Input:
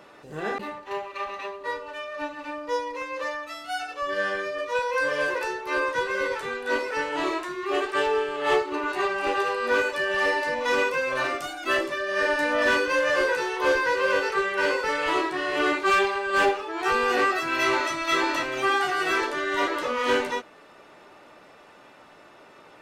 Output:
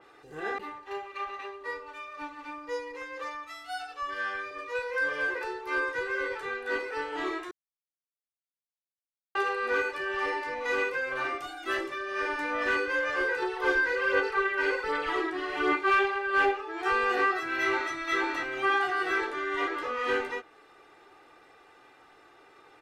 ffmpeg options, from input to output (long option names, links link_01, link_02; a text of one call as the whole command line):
ffmpeg -i in.wav -filter_complex "[0:a]asettb=1/sr,asplit=3[link_01][link_02][link_03];[link_01]atrim=end=3.444[link_04];[link_02]atrim=start=3.44:end=4.51,asetpts=PTS-STARTPTS,afade=type=in:duration=0.004:curve=qsin,afade=type=out:start_time=1.066:duration=0.004:curve=qsin,equalizer=frequency=370:width=2.2:gain=-9[link_05];[link_03]atrim=start=4.506[link_06];[link_04][link_05]acrossfade=duration=0.004:curve1=hsin:curve2=qsin[link_07];[link_07][link_06]acrossfade=duration=0.004:curve1=qsin:curve2=hsin,asettb=1/sr,asplit=3[link_08][link_09][link_10];[link_08]atrim=end=13.424[link_11];[link_09]atrim=start=13.42:end=15.77,asetpts=PTS-STARTPTS,afade=type=in:duration=0.004:curve=qsin,afade=type=out:start_time=2.346:duration=0.004:curve=qsin,aphaser=in_gain=1:out_gain=1:delay=3.2:decay=0.42:speed=1.3:type=sinusoidal[link_12];[link_10]atrim=start=15.766[link_13];[link_11][link_12]acrossfade=duration=0.004:curve1=hsin:curve2=qsin[link_14];[link_14][link_13]acrossfade=duration=0.004:curve1=qsin:curve2=hsin,asplit=3[link_15][link_16][link_17];[link_15]atrim=end=7.51,asetpts=PTS-STARTPTS,afade=type=out:start_time=7.506:duration=0.004:curve=hsin[link_18];[link_16]atrim=start=7.51:end=9.35,asetpts=PTS-STARTPTS,volume=0[link_19];[link_17]atrim=start=9.35,asetpts=PTS-STARTPTS,afade=type=in:duration=0.004:curve=hsin[link_20];[link_18][link_19][link_20]concat=n=3:v=0:a=1,equalizer=frequency=1700:width=1.6:gain=3.5,aecho=1:1:2.5:0.63,adynamicequalizer=threshold=0.0141:dfrequency=4000:dqfactor=0.7:tfrequency=4000:tqfactor=0.7:attack=5:release=100:ratio=0.375:range=3.5:mode=cutabove:tftype=highshelf,volume=-8dB" out.wav